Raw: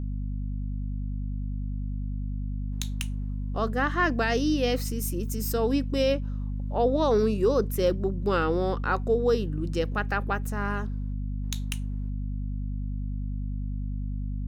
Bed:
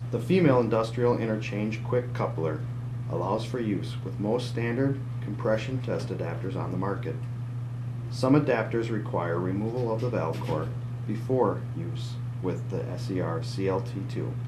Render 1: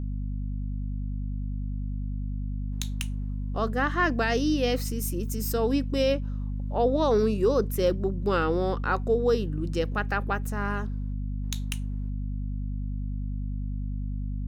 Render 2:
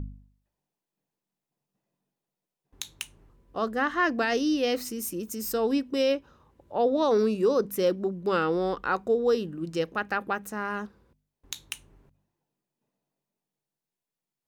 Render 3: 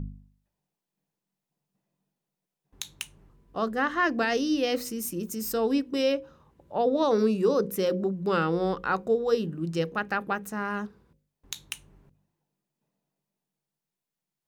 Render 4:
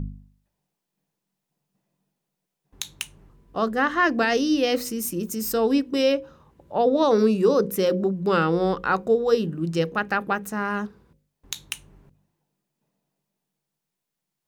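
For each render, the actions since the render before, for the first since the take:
no processing that can be heard
hum removal 50 Hz, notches 5
parametric band 170 Hz +7 dB 0.51 octaves; mains-hum notches 60/120/180/240/300/360/420/480/540 Hz
level +4.5 dB

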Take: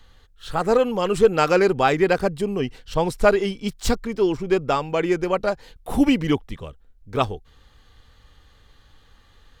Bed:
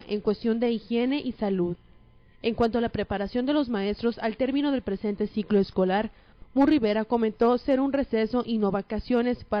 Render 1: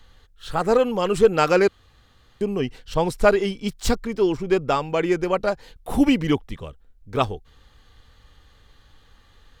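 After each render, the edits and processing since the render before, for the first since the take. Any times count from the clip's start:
0:01.68–0:02.41: fill with room tone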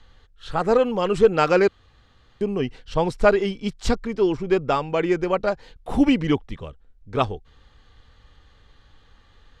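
low-pass filter 7,900 Hz 12 dB per octave
high-shelf EQ 5,700 Hz −6 dB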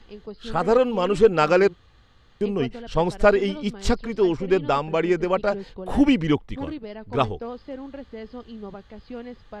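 mix in bed −12.5 dB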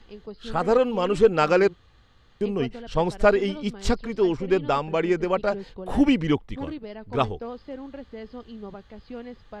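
level −1.5 dB

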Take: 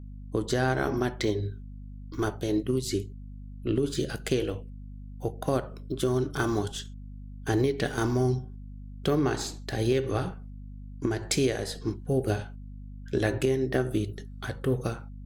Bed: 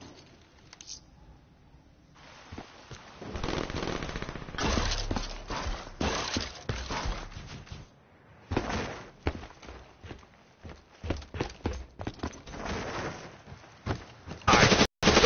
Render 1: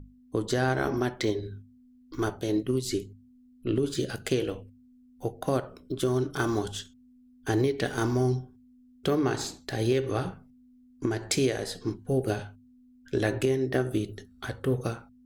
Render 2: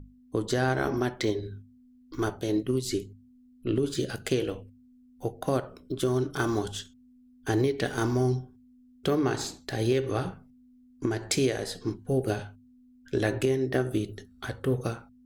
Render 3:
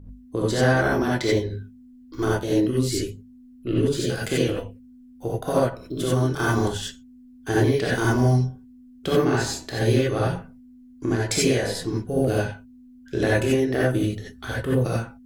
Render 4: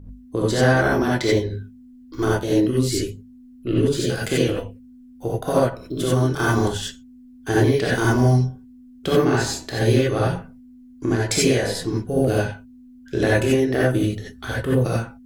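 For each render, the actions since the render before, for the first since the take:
mains-hum notches 50/100/150/200 Hz
no processing that can be heard
reverb whose tail is shaped and stops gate 110 ms rising, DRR −6 dB
level +2.5 dB

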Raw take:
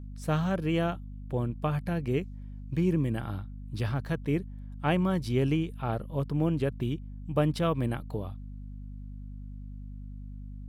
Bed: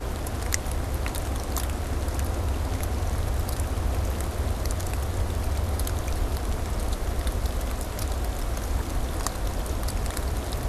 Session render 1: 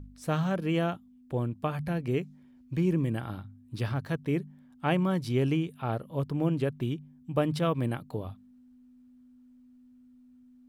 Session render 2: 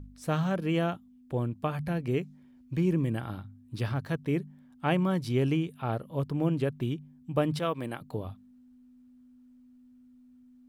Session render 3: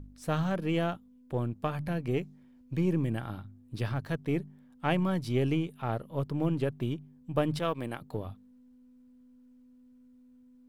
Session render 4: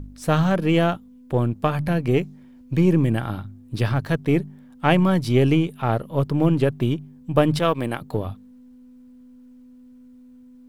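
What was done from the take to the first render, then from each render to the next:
hum removal 50 Hz, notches 4
0:07.59–0:08.01: high-pass filter 380 Hz 6 dB per octave
gain on one half-wave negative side −3 dB
level +10.5 dB

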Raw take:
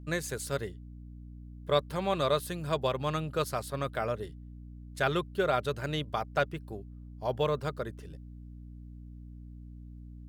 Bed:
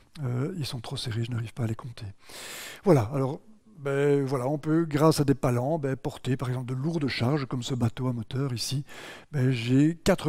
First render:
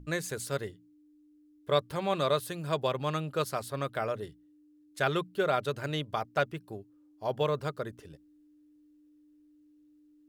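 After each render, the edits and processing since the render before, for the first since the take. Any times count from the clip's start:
mains-hum notches 60/120/180/240 Hz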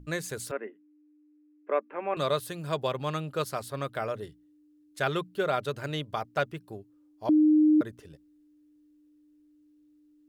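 0:00.51–0:02.17: Chebyshev band-pass filter 220–2,600 Hz, order 5
0:07.29–0:07.81: beep over 306 Hz −17 dBFS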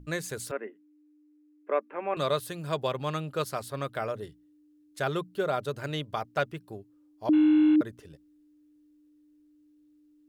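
0:04.10–0:05.79: dynamic equaliser 2,400 Hz, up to −5 dB, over −44 dBFS, Q 0.82
0:07.33–0:07.76: linear delta modulator 16 kbit/s, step −30.5 dBFS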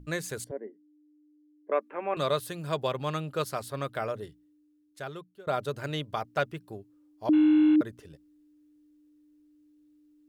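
0:00.44–0:01.72: moving average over 34 samples
0:04.12–0:05.47: fade out, to −23.5 dB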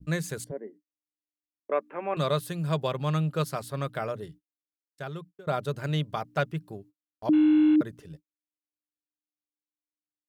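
noise gate −51 dBFS, range −46 dB
parametric band 160 Hz +10 dB 0.45 octaves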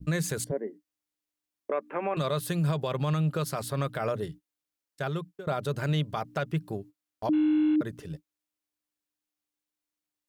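in parallel at 0 dB: downward compressor, threshold −30 dBFS, peak gain reduction 10.5 dB
on the sum: brickwall limiter −20 dBFS, peak gain reduction 8.5 dB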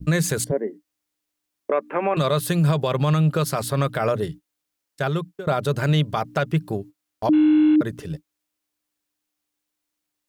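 level +8 dB

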